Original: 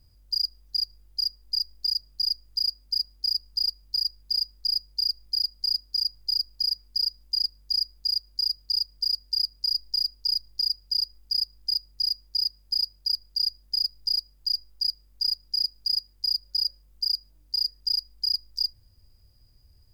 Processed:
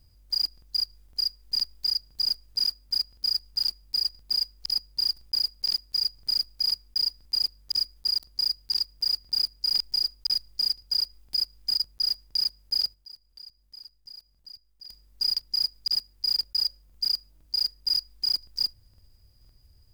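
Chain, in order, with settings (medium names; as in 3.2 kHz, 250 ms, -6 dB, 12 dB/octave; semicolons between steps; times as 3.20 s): block-companded coder 5-bit; 12.94–14.88 s: level held to a coarse grid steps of 22 dB; crackling interface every 0.51 s, samples 2048, repeat, from 0.53 s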